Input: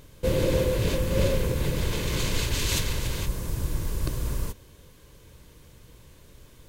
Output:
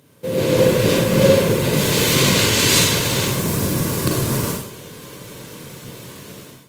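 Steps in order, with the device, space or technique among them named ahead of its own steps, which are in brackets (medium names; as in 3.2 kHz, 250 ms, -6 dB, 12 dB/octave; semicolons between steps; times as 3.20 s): 1.73–2.15 s: treble shelf 4.1 kHz +6 dB; far-field microphone of a smart speaker (reverberation RT60 0.55 s, pre-delay 36 ms, DRR -0.5 dB; high-pass 120 Hz 24 dB/octave; level rider gain up to 16.5 dB; trim -1 dB; Opus 32 kbps 48 kHz)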